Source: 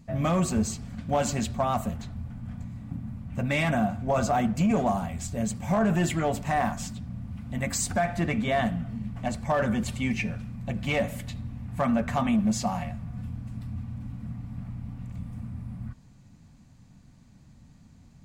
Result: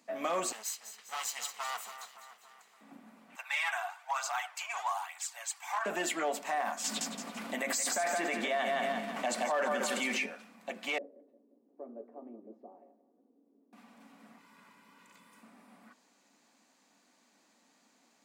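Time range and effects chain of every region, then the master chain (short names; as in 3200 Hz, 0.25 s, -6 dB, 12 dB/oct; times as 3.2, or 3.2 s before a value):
0.52–2.81 minimum comb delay 0.99 ms + passive tone stack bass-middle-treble 10-0-10 + split-band echo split 2300 Hz, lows 0.283 s, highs 0.201 s, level -10.5 dB
3.35–5.86 elliptic high-pass 860 Hz, stop band 70 dB + phaser 1.1 Hz, delay 3.1 ms, feedback 44%
6.84–10.26 feedback echo 0.168 s, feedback 33%, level -7 dB + fast leveller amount 100%
10.98–13.73 Butterworth band-pass 360 Hz, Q 2.4 + feedback echo 0.176 s, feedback 45%, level -16 dB
14.38–15.43 band shelf 590 Hz -9 dB 1 oct + comb 2 ms, depth 63%
whole clip: Bessel high-pass 480 Hz, order 8; limiter -23.5 dBFS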